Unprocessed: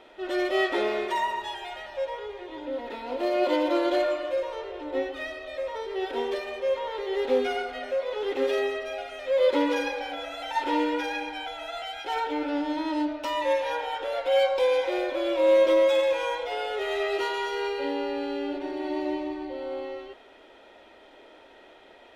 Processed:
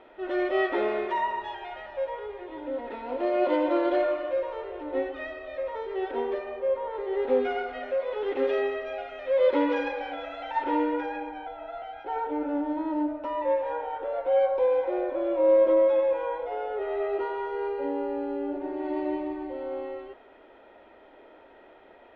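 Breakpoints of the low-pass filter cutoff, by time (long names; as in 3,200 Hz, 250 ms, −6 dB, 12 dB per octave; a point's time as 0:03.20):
0:05.94 2,100 Hz
0:06.79 1,200 Hz
0:07.69 2,300 Hz
0:10.27 2,300 Hz
0:11.45 1,100 Hz
0:18.52 1,100 Hz
0:18.98 1,900 Hz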